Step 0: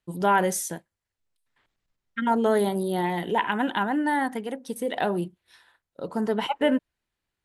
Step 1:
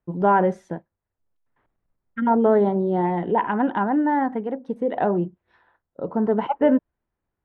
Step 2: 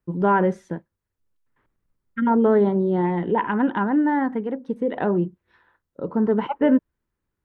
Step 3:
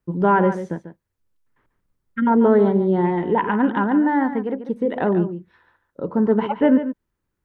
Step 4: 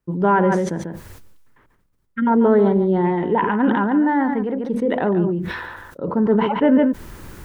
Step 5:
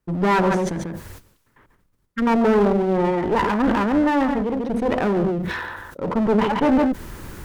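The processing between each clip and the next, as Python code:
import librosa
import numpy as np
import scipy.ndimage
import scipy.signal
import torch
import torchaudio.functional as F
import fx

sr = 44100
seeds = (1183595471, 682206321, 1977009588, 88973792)

y1 = scipy.signal.sosfilt(scipy.signal.butter(2, 1100.0, 'lowpass', fs=sr, output='sos'), x)
y1 = F.gain(torch.from_numpy(y1), 5.0).numpy()
y2 = fx.peak_eq(y1, sr, hz=710.0, db=-9.0, octaves=0.61)
y2 = F.gain(torch.from_numpy(y2), 2.0).numpy()
y3 = y2 + 10.0 ** (-11.0 / 20.0) * np.pad(y2, (int(143 * sr / 1000.0), 0))[:len(y2)]
y3 = F.gain(torch.from_numpy(y3), 2.0).numpy()
y4 = fx.sustainer(y3, sr, db_per_s=36.0)
y5 = fx.clip_asym(y4, sr, top_db=-26.0, bottom_db=-9.5)
y5 = F.gain(torch.from_numpy(y5), 2.0).numpy()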